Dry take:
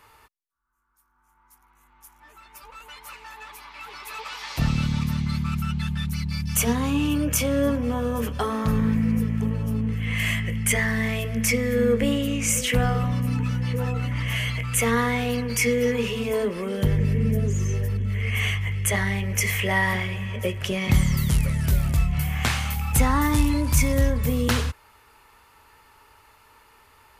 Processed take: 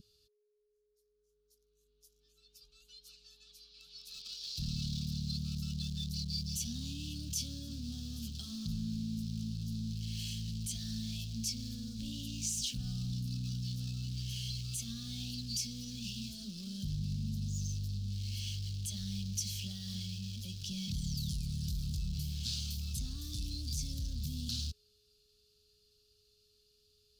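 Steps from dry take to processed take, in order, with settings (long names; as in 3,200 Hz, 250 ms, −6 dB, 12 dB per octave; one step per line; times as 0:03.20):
in parallel at −5.5 dB: bit reduction 5 bits
on the sum: brickwall limiter −12 dBFS, peak gain reduction 8.5 dB
soft clipping −16 dBFS, distortion −18 dB
three-way crossover with the lows and the highs turned down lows −17 dB, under 470 Hz, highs −21 dB, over 4,900 Hz
steady tone 420 Hz −35 dBFS
elliptic band-stop filter 200–4,400 Hz, stop band 40 dB
level +3 dB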